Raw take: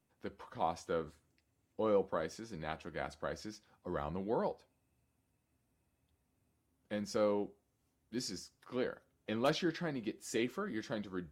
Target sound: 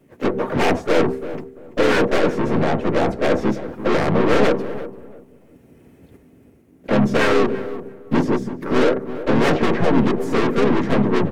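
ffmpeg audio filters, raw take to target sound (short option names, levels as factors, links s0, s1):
-filter_complex "[0:a]apsyclip=17.8,acrossover=split=750|1300[s0][s1][s2];[s2]acompressor=threshold=0.0126:ratio=8[s3];[s0][s1][s3]amix=inputs=3:normalize=0,agate=range=0.398:threshold=0.00316:ratio=16:detection=peak,aeval=exprs='0.355*(abs(mod(val(0)/0.355+3,4)-2)-1)':c=same,equalizer=f=125:t=o:w=1:g=7,equalizer=f=250:t=o:w=1:g=9,equalizer=f=500:t=o:w=1:g=9,equalizer=f=1000:t=o:w=1:g=-3,equalizer=f=2000:t=o:w=1:g=8,equalizer=f=4000:t=o:w=1:g=-5,equalizer=f=8000:t=o:w=1:g=-4,dynaudnorm=f=370:g=5:m=2.24,equalizer=f=370:w=6.2:g=11,bandreject=f=195.3:t=h:w=4,bandreject=f=390.6:t=h:w=4,aeval=exprs='(tanh(7.08*val(0)+0.25)-tanh(0.25))/7.08':c=same,aecho=1:1:4.4:0.31,asplit=2[s4][s5];[s5]adelay=338,lowpass=f=1200:p=1,volume=0.251,asplit=2[s6][s7];[s7]adelay=338,lowpass=f=1200:p=1,volume=0.24,asplit=2[s8][s9];[s9]adelay=338,lowpass=f=1200:p=1,volume=0.24[s10];[s4][s6][s8][s10]amix=inputs=4:normalize=0,asplit=4[s11][s12][s13][s14];[s12]asetrate=29433,aresample=44100,atempo=1.49831,volume=0.501[s15];[s13]asetrate=52444,aresample=44100,atempo=0.840896,volume=0.562[s16];[s14]asetrate=55563,aresample=44100,atempo=0.793701,volume=0.141[s17];[s11][s15][s16][s17]amix=inputs=4:normalize=0"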